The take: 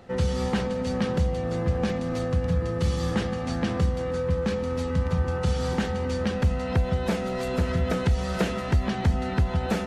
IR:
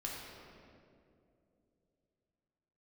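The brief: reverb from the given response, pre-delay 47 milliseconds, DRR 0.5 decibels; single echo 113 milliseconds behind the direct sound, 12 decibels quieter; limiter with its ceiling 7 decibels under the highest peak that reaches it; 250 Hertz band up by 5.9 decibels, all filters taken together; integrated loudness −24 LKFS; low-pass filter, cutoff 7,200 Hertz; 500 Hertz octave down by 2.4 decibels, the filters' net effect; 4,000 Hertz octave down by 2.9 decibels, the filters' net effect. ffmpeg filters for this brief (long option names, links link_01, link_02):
-filter_complex "[0:a]lowpass=7200,equalizer=frequency=250:width_type=o:gain=8.5,equalizer=frequency=500:width_type=o:gain=-4.5,equalizer=frequency=4000:width_type=o:gain=-3.5,alimiter=limit=-15.5dB:level=0:latency=1,aecho=1:1:113:0.251,asplit=2[link_01][link_02];[1:a]atrim=start_sample=2205,adelay=47[link_03];[link_02][link_03]afir=irnorm=-1:irlink=0,volume=-1.5dB[link_04];[link_01][link_04]amix=inputs=2:normalize=0,volume=-1dB"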